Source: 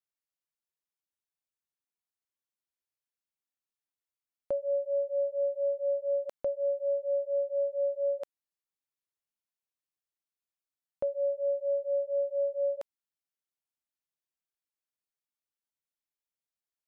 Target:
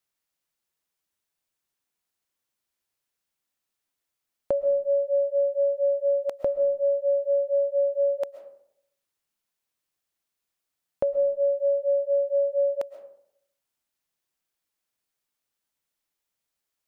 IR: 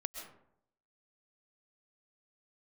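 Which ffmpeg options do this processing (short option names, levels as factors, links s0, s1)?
-filter_complex "[0:a]acompressor=threshold=0.0282:ratio=6,asplit=2[s0][s1];[1:a]atrim=start_sample=2205[s2];[s1][s2]afir=irnorm=-1:irlink=0,volume=0.794[s3];[s0][s3]amix=inputs=2:normalize=0,volume=1.88"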